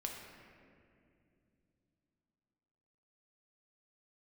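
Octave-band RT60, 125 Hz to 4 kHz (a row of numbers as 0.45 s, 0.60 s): 4.1 s, 4.0 s, 3.0 s, 2.1 s, 2.1 s, 1.4 s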